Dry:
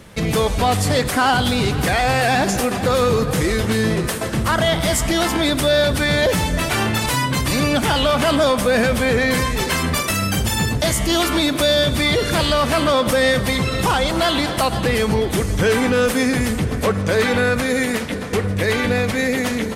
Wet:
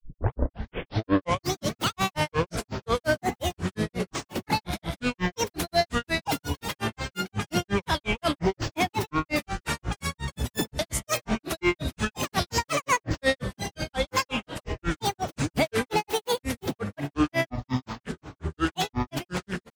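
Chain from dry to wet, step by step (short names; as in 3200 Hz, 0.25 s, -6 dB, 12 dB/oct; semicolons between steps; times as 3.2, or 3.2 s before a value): tape start at the beginning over 1.91 s; grains 0.145 s, grains 5.6/s, pitch spread up and down by 12 st; upward expander 1.5:1, over -37 dBFS; gain -3 dB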